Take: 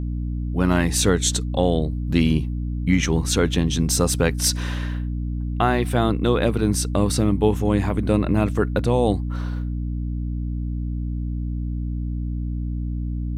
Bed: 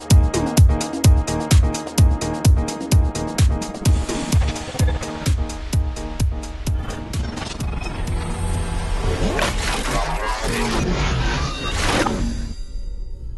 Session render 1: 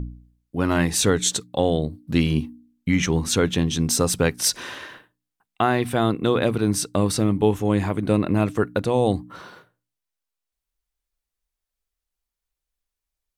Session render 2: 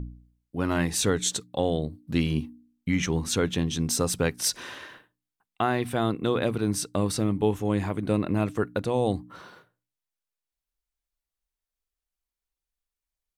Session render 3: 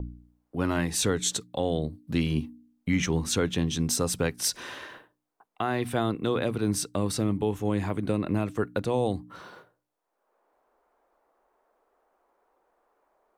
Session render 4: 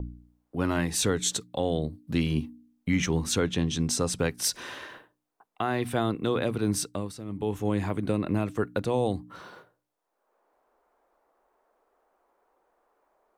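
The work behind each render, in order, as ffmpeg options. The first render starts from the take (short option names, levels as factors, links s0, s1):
-af "bandreject=f=60:t=h:w=4,bandreject=f=120:t=h:w=4,bandreject=f=180:t=h:w=4,bandreject=f=240:t=h:w=4,bandreject=f=300:t=h:w=4"
-af "volume=0.562"
-filter_complex "[0:a]acrossover=split=350|1100|6600[s0][s1][s2][s3];[s1]acompressor=mode=upward:threshold=0.00794:ratio=2.5[s4];[s0][s4][s2][s3]amix=inputs=4:normalize=0,alimiter=limit=0.178:level=0:latency=1:release=240"
-filter_complex "[0:a]asettb=1/sr,asplit=3[s0][s1][s2];[s0]atrim=end=3.414[s3];[s1]atrim=start=3.41:end=4.19,asetpts=PTS-STARTPTS,afade=t=in:d=0.004:c=qsin,afade=t=out:st=0.776:d=0.004:c=qsin,lowpass=9400[s4];[s2]atrim=start=4.186[s5];[s3][s4]acrossfade=d=0.004:c1=hsin:c2=qsin[s6];[s6][s5]acrossfade=d=0.004:c1=qsin:c2=hsin,asplit=3[s7][s8][s9];[s7]atrim=end=7.14,asetpts=PTS-STARTPTS,afade=t=out:st=6.83:d=0.31:silence=0.223872[s10];[s8]atrim=start=7.14:end=7.25,asetpts=PTS-STARTPTS,volume=0.224[s11];[s9]atrim=start=7.25,asetpts=PTS-STARTPTS,afade=t=in:d=0.31:silence=0.223872[s12];[s10][s11][s12]concat=n=3:v=0:a=1"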